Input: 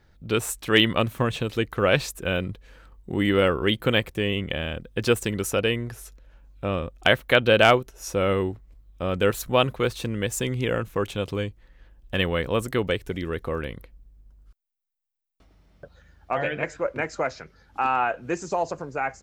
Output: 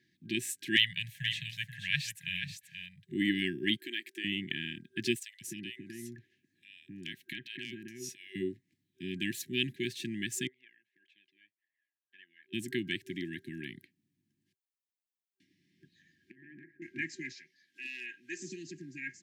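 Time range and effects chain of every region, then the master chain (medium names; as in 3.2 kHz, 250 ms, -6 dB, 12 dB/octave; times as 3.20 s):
0.76–3.12 s: Chebyshev band-stop 160–1200 Hz, order 4 + delay 482 ms -8 dB
3.76–4.24 s: high-pass 330 Hz 24 dB/octave + compression 2.5:1, threshold -27 dBFS
5.15–8.35 s: compression 3:1, threshold -31 dBFS + bands offset in time highs, lows 260 ms, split 1.7 kHz
10.47–12.53 s: ladder band-pass 1.2 kHz, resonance 25% + flange 1.7 Hz, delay 0.6 ms, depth 1 ms, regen +40% + compression 2.5:1, threshold -48 dBFS
16.31–16.82 s: low-pass 1.3 kHz 24 dB/octave + bass shelf 320 Hz -10 dB + compression 12:1, threshold -34 dBFS
17.32–18.40 s: high-pass 1.1 kHz 6 dB/octave + hard clipper -18 dBFS
whole clip: Bessel high-pass 210 Hz, order 8; FFT band-reject 380–1600 Hz; treble shelf 10 kHz -7 dB; trim -4.5 dB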